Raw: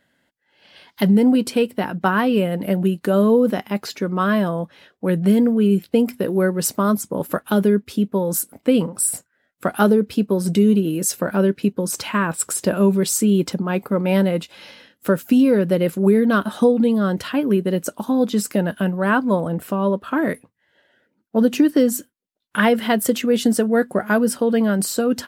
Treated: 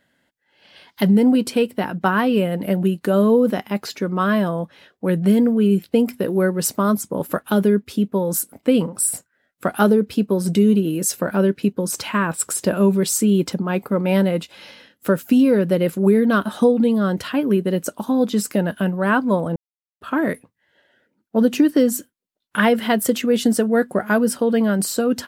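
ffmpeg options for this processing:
-filter_complex "[0:a]asplit=3[a][b][c];[a]atrim=end=19.56,asetpts=PTS-STARTPTS,afade=t=out:st=19.556:d=0.004:c=hsin[d];[b]atrim=start=19.56:end=20.01,asetpts=PTS-STARTPTS,volume=0[e];[c]atrim=start=20.01,asetpts=PTS-STARTPTS,afade=t=in:d=0.004:c=hsin[f];[d][e][f]concat=n=3:v=0:a=1"

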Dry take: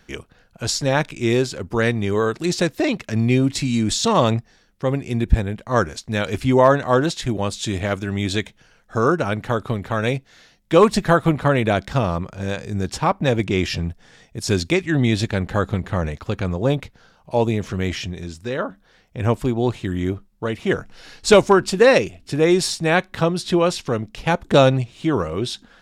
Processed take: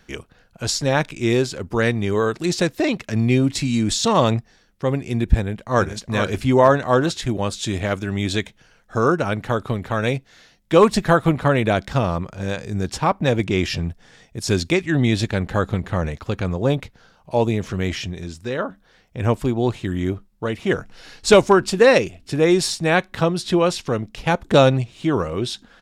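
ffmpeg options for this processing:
-filter_complex "[0:a]asplit=2[a][b];[b]afade=t=in:st=5.35:d=0.01,afade=t=out:st=5.92:d=0.01,aecho=0:1:430|860|1290|1720:0.446684|0.156339|0.0547187|0.0191516[c];[a][c]amix=inputs=2:normalize=0"

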